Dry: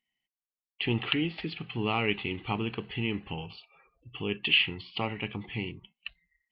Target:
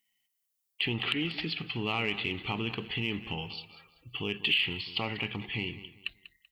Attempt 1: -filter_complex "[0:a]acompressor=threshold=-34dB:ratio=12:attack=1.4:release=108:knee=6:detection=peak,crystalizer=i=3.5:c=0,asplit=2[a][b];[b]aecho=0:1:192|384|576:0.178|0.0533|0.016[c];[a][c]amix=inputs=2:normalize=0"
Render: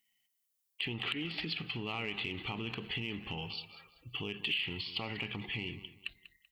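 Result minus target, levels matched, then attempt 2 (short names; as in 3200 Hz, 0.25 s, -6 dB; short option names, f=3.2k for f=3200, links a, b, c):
compressor: peak gain reduction +7.5 dB
-filter_complex "[0:a]acompressor=threshold=-26dB:ratio=12:attack=1.4:release=108:knee=6:detection=peak,crystalizer=i=3.5:c=0,asplit=2[a][b];[b]aecho=0:1:192|384|576:0.178|0.0533|0.016[c];[a][c]amix=inputs=2:normalize=0"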